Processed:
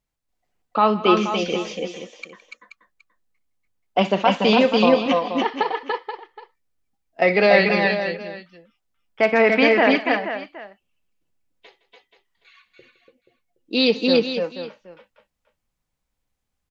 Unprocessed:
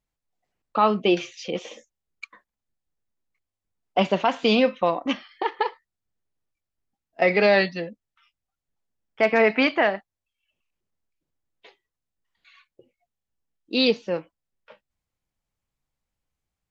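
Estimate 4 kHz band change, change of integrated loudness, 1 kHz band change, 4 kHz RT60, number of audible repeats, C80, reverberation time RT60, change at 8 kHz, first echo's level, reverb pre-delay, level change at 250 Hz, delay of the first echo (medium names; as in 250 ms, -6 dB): +4.5 dB, +3.5 dB, +4.5 dB, no reverb, 5, no reverb, no reverb, no reading, -18.0 dB, no reverb, +5.0 dB, 61 ms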